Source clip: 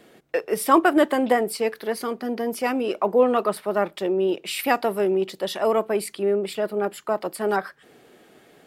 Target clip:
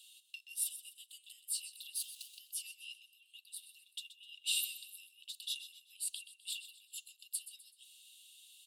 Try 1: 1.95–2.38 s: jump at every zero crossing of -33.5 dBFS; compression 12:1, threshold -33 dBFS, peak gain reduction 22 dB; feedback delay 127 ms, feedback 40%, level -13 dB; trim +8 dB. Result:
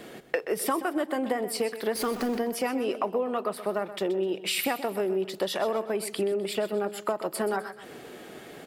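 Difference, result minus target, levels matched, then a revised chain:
2 kHz band +3.0 dB
1.95–2.38 s: jump at every zero crossing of -33.5 dBFS; compression 12:1, threshold -33 dBFS, peak gain reduction 22 dB; rippled Chebyshev high-pass 2.7 kHz, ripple 9 dB; feedback delay 127 ms, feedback 40%, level -13 dB; trim +8 dB

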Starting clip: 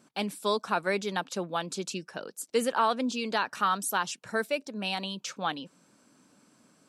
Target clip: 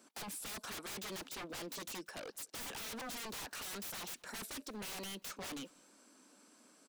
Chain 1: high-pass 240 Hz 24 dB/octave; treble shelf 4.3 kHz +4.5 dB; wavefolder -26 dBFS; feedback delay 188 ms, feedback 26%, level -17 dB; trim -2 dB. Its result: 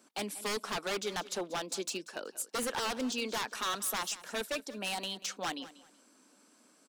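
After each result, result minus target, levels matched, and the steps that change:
wavefolder: distortion -16 dB; echo-to-direct +9.5 dB
change: wavefolder -37.5 dBFS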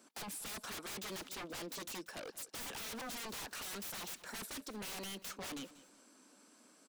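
echo-to-direct +9.5 dB
change: feedback delay 188 ms, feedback 26%, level -26.5 dB

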